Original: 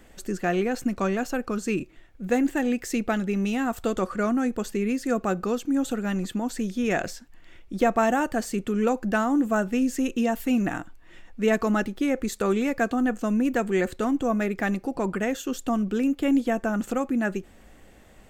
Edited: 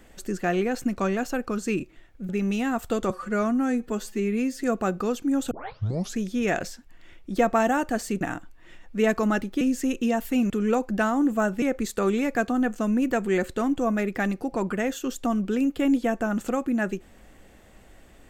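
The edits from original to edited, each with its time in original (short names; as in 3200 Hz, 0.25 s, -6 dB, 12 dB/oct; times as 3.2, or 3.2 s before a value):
2.29–3.23 cut
4.04–5.06 stretch 1.5×
5.94 tape start 0.68 s
8.64–9.76 swap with 10.65–12.05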